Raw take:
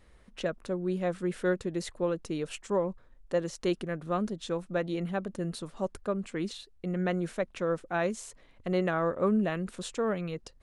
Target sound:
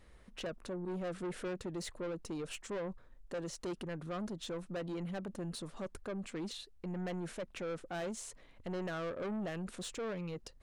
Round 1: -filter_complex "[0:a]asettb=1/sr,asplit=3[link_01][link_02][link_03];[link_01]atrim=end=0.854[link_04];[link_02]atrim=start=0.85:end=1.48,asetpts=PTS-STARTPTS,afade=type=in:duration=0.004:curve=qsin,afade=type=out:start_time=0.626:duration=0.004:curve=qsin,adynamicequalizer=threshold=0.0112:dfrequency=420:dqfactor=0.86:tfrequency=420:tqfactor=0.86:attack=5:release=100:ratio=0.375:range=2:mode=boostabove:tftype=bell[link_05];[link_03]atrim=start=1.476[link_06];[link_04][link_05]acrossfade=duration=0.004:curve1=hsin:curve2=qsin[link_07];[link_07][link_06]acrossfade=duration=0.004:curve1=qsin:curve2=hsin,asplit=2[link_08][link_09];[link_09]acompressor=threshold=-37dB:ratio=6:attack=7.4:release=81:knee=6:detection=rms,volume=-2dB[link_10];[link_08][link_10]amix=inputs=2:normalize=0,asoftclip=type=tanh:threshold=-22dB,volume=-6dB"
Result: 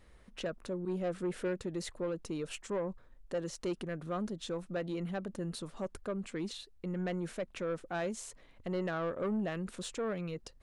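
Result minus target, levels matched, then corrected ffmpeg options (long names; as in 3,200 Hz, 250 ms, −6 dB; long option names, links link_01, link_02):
soft clipping: distortion −7 dB
-filter_complex "[0:a]asettb=1/sr,asplit=3[link_01][link_02][link_03];[link_01]atrim=end=0.854[link_04];[link_02]atrim=start=0.85:end=1.48,asetpts=PTS-STARTPTS,afade=type=in:duration=0.004:curve=qsin,afade=type=out:start_time=0.626:duration=0.004:curve=qsin,adynamicequalizer=threshold=0.0112:dfrequency=420:dqfactor=0.86:tfrequency=420:tqfactor=0.86:attack=5:release=100:ratio=0.375:range=2:mode=boostabove:tftype=bell[link_05];[link_03]atrim=start=1.476[link_06];[link_04][link_05]acrossfade=duration=0.004:curve1=hsin:curve2=qsin[link_07];[link_07][link_06]acrossfade=duration=0.004:curve1=qsin:curve2=hsin,asplit=2[link_08][link_09];[link_09]acompressor=threshold=-37dB:ratio=6:attack=7.4:release=81:knee=6:detection=rms,volume=-2dB[link_10];[link_08][link_10]amix=inputs=2:normalize=0,asoftclip=type=tanh:threshold=-29.5dB,volume=-6dB"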